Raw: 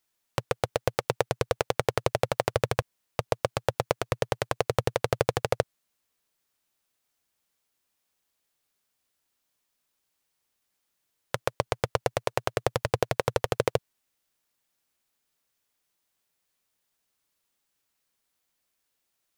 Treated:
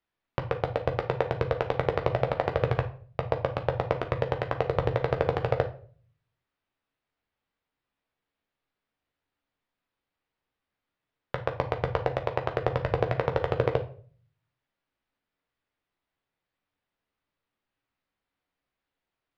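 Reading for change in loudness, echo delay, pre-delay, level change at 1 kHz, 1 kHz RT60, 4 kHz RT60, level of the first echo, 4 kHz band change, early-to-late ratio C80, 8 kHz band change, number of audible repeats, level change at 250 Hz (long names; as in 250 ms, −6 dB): +0.5 dB, no echo audible, 11 ms, 0.0 dB, 0.40 s, 0.35 s, no echo audible, −7.5 dB, 18.0 dB, below −20 dB, no echo audible, +1.5 dB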